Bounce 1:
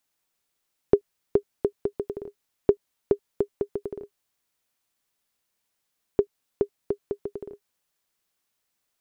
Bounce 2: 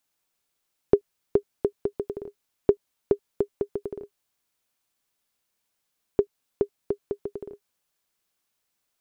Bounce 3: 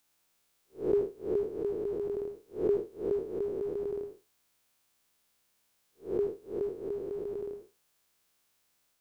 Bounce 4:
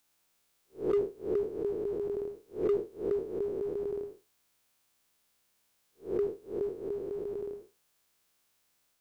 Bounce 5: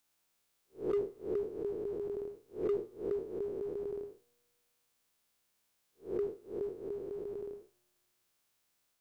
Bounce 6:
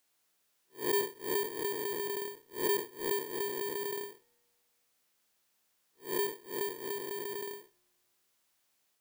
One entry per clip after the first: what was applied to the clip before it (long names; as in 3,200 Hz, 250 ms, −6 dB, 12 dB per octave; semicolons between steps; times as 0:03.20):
notch filter 1,900 Hz, Q 28
spectrum smeared in time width 169 ms; level +6.5 dB
hard clipping −22.5 dBFS, distortion −22 dB
tuned comb filter 120 Hz, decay 1.9 s, mix 40%
samples in bit-reversed order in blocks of 32 samples; low-shelf EQ 89 Hz −11.5 dB; level +2.5 dB